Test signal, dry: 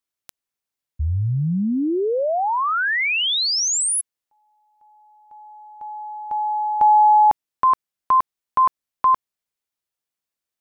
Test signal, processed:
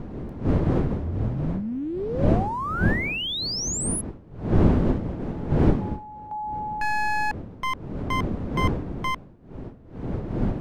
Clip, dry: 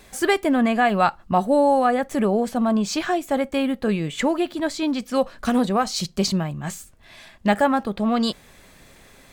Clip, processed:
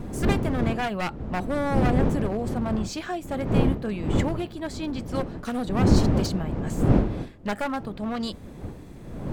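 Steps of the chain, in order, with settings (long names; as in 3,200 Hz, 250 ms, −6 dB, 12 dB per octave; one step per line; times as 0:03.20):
wavefolder on the positive side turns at −18 dBFS
wind on the microphone 250 Hz −18 dBFS
level −8 dB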